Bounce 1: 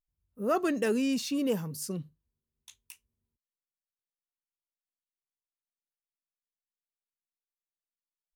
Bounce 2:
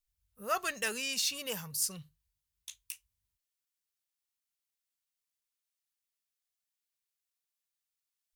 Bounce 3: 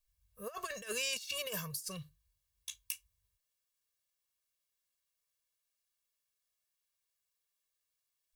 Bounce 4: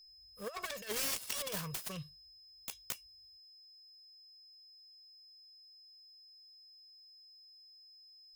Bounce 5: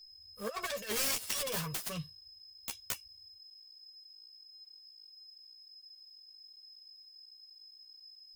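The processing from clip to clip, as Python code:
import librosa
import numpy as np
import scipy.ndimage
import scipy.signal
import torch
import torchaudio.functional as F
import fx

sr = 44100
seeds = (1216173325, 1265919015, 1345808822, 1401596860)

y1 = fx.tone_stack(x, sr, knobs='10-0-10')
y1 = y1 * 10.0 ** (7.5 / 20.0)
y2 = y1 + 0.89 * np.pad(y1, (int(1.8 * sr / 1000.0), 0))[:len(y1)]
y2 = fx.over_compress(y2, sr, threshold_db=-35.0, ratio=-0.5)
y2 = y2 * 10.0 ** (-3.5 / 20.0)
y3 = fx.self_delay(y2, sr, depth_ms=0.76)
y3 = y3 + 10.0 ** (-58.0 / 20.0) * np.sin(2.0 * np.pi * 5100.0 * np.arange(len(y3)) / sr)
y3 = y3 * 10.0 ** (1.5 / 20.0)
y4 = fx.chorus_voices(y3, sr, voices=4, hz=0.79, base_ms=11, depth_ms=2.4, mix_pct=40)
y4 = y4 * 10.0 ** (6.5 / 20.0)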